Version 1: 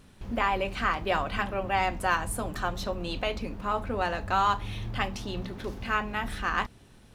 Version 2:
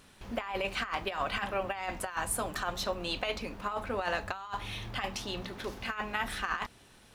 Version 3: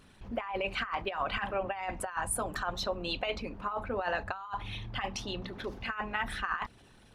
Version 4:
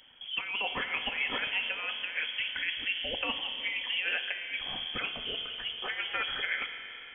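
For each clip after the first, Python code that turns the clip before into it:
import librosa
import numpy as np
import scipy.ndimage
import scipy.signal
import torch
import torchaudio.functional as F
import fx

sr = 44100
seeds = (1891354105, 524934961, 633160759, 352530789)

y1 = fx.low_shelf(x, sr, hz=400.0, db=-11.5)
y1 = fx.over_compress(y1, sr, threshold_db=-32.0, ratio=-0.5)
y2 = fx.envelope_sharpen(y1, sr, power=1.5)
y3 = fx.rev_spring(y2, sr, rt60_s=3.6, pass_ms=(30, 55), chirp_ms=50, drr_db=7.0)
y3 = fx.freq_invert(y3, sr, carrier_hz=3300)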